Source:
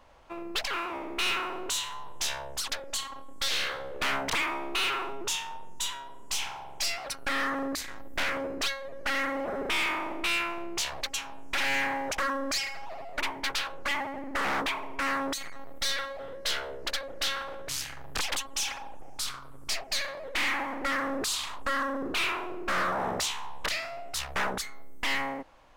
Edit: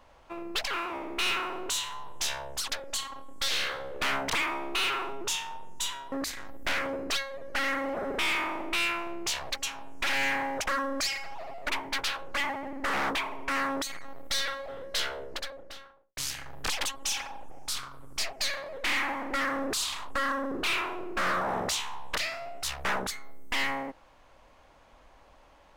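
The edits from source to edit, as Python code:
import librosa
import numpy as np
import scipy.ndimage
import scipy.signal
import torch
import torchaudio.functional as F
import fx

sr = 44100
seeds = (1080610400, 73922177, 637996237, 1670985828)

y = fx.studio_fade_out(x, sr, start_s=16.57, length_s=1.11)
y = fx.edit(y, sr, fx.cut(start_s=6.12, length_s=1.51), tone=tone)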